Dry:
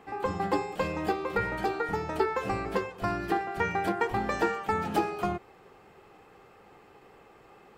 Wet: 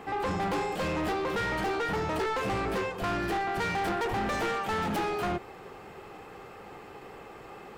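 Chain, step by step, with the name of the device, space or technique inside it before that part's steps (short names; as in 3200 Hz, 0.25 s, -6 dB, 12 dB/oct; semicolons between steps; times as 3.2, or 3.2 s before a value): saturation between pre-emphasis and de-emphasis (high shelf 3400 Hz +7.5 dB; soft clip -36 dBFS, distortion -4 dB; high shelf 3400 Hz -7.5 dB); gain +9 dB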